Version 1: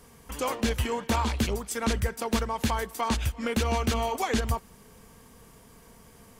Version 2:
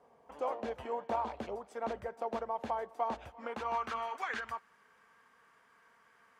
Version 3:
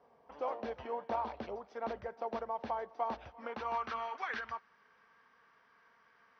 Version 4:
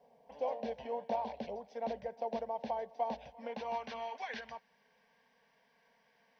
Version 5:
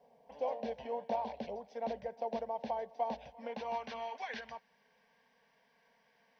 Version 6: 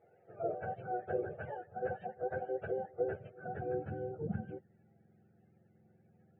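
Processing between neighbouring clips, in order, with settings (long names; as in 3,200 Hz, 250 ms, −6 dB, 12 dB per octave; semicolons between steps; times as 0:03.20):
band-pass filter sweep 680 Hz → 1,500 Hz, 0:03.22–0:04.16
Chebyshev low-pass filter 5,800 Hz, order 6; level −1 dB
phaser with its sweep stopped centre 340 Hz, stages 6; level +3 dB
no processing that can be heard
frequency axis turned over on the octave scale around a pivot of 590 Hz; downsampling to 8,000 Hz; level +2 dB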